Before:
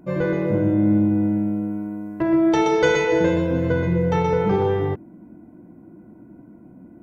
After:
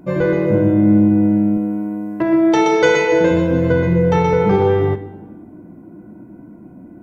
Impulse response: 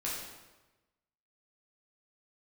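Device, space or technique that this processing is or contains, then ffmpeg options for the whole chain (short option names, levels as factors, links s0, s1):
ducked reverb: -filter_complex "[0:a]asplit=3[s0][s1][s2];[1:a]atrim=start_sample=2205[s3];[s1][s3]afir=irnorm=-1:irlink=0[s4];[s2]apad=whole_len=309696[s5];[s4][s5]sidechaincompress=threshold=0.0794:ratio=3:attack=16:release=1310,volume=0.316[s6];[s0][s6]amix=inputs=2:normalize=0,asettb=1/sr,asplit=3[s7][s8][s9];[s7]atrim=end=1.574[s10];[s8]atrim=start=1.57:end=3.31,asetpts=PTS-STARTPTS,afade=t=in:d=0.004:c=qsin,afade=t=out:st=1.736:d=0.004:c=qsin,highpass=f=180:p=1[s11];[s9]atrim=start=3.306[s12];[s10][s11]acrossfade=d=0.004:c1=hsin:c2=qsin[s13];[s13][s12]acrossfade=d=0.004:c1=qsin:c2=hsin,volume=1.58"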